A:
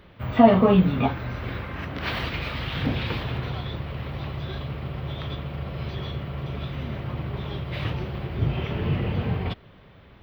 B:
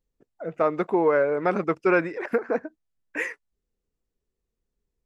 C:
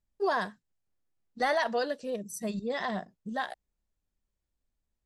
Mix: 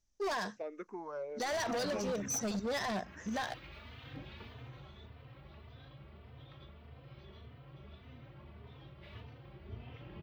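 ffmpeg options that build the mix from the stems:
ffmpeg -i stem1.wav -i stem2.wav -i stem3.wav -filter_complex "[0:a]asplit=2[link_01][link_02];[link_02]adelay=3.2,afreqshift=1.7[link_03];[link_01][link_03]amix=inputs=2:normalize=1,adelay=1300,volume=-18dB[link_04];[1:a]asplit=2[link_05][link_06];[link_06]afreqshift=-1.4[link_07];[link_05][link_07]amix=inputs=2:normalize=1,volume=-18dB[link_08];[2:a]volume=0.5dB[link_09];[link_08][link_09]amix=inputs=2:normalize=0,lowpass=frequency=6000:width_type=q:width=7.1,alimiter=limit=-23.5dB:level=0:latency=1:release=34,volume=0dB[link_10];[link_04][link_10]amix=inputs=2:normalize=0,equalizer=frequency=160:width=6.1:gain=-7.5,asoftclip=type=hard:threshold=-32dB" out.wav

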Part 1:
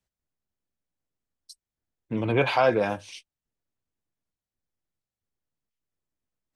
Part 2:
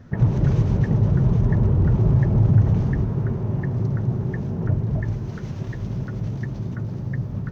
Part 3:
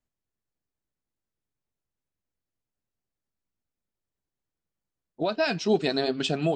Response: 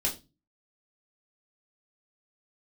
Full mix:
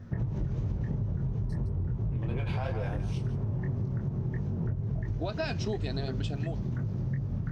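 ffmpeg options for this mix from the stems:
-filter_complex "[0:a]aeval=exprs='if(lt(val(0),0),0.708*val(0),val(0))':channel_layout=same,volume=3dB,asplit=2[link_01][link_02];[link_02]volume=-17.5dB[link_03];[1:a]lowshelf=frequency=150:gain=6.5,volume=-1dB[link_04];[2:a]dynaudnorm=framelen=370:gausssize=7:maxgain=11.5dB,volume=-10.5dB[link_05];[link_01][link_04]amix=inputs=2:normalize=0,flanger=delay=20:depth=5:speed=2.9,acompressor=threshold=-19dB:ratio=6,volume=0dB[link_06];[link_03]aecho=0:1:163:1[link_07];[link_05][link_06][link_07]amix=inputs=3:normalize=0,acompressor=threshold=-28dB:ratio=6"

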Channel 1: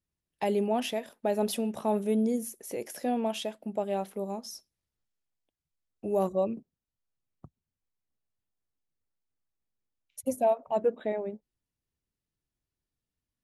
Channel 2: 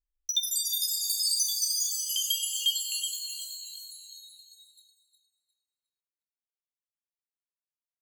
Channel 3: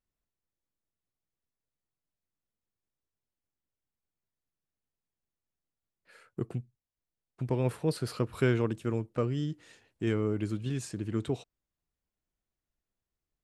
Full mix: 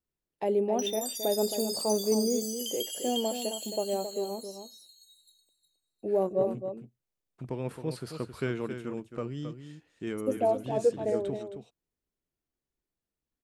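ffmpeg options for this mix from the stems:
ffmpeg -i stem1.wav -i stem2.wav -i stem3.wav -filter_complex "[0:a]equalizer=frequency=420:width_type=o:width=2:gain=12,volume=-9.5dB,asplit=2[link_01][link_02];[link_02]volume=-8.5dB[link_03];[1:a]acompressor=threshold=-36dB:ratio=1.5,adelay=500,volume=-4dB[link_04];[2:a]equalizer=frequency=110:width=7.4:gain=-14,volume=-4.5dB,asplit=2[link_05][link_06];[link_06]volume=-9dB[link_07];[link_03][link_07]amix=inputs=2:normalize=0,aecho=0:1:268:1[link_08];[link_01][link_04][link_05][link_08]amix=inputs=4:normalize=0" out.wav

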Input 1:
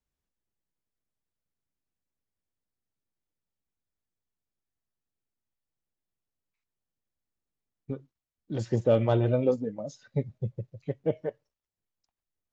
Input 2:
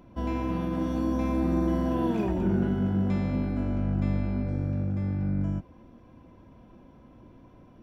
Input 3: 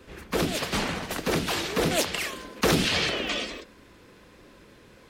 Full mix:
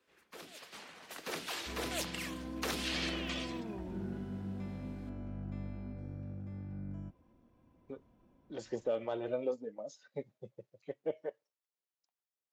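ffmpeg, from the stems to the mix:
ffmpeg -i stem1.wav -i stem2.wav -i stem3.wav -filter_complex "[0:a]highpass=370,volume=-5.5dB[link_01];[1:a]adelay=1500,volume=-15dB[link_02];[2:a]highpass=frequency=690:poles=1,volume=-10.5dB,afade=type=in:start_time=0.94:duration=0.34:silence=0.316228[link_03];[link_01][link_02][link_03]amix=inputs=3:normalize=0,alimiter=level_in=0.5dB:limit=-24dB:level=0:latency=1:release=240,volume=-0.5dB" out.wav

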